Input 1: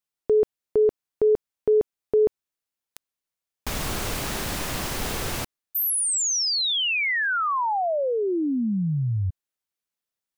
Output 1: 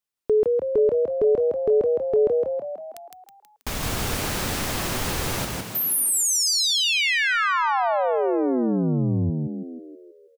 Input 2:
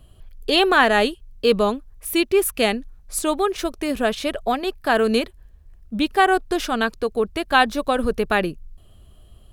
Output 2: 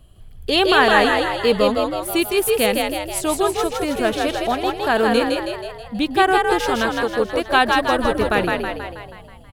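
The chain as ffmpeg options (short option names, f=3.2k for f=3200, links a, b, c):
-filter_complex "[0:a]asplit=9[a][b][c][d][e][f][g][h][i];[b]adelay=161,afreqshift=52,volume=-3dB[j];[c]adelay=322,afreqshift=104,volume=-8.2dB[k];[d]adelay=483,afreqshift=156,volume=-13.4dB[l];[e]adelay=644,afreqshift=208,volume=-18.6dB[m];[f]adelay=805,afreqshift=260,volume=-23.8dB[n];[g]adelay=966,afreqshift=312,volume=-29dB[o];[h]adelay=1127,afreqshift=364,volume=-34.2dB[p];[i]adelay=1288,afreqshift=416,volume=-39.3dB[q];[a][j][k][l][m][n][o][p][q]amix=inputs=9:normalize=0"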